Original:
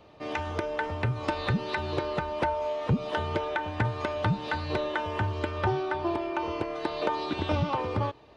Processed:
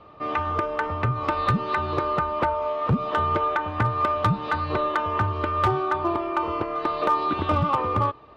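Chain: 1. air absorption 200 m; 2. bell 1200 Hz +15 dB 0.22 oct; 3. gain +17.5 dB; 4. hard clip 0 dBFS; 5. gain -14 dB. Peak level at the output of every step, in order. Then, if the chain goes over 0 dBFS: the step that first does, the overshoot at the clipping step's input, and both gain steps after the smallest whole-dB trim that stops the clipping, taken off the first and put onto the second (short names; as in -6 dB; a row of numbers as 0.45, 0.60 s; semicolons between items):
-15.5, -10.5, +7.0, 0.0, -14.0 dBFS; step 3, 7.0 dB; step 3 +10.5 dB, step 5 -7 dB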